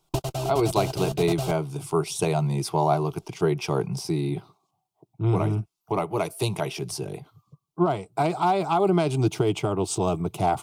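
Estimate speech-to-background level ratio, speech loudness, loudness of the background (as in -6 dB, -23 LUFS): 5.5 dB, -25.5 LUFS, -31.0 LUFS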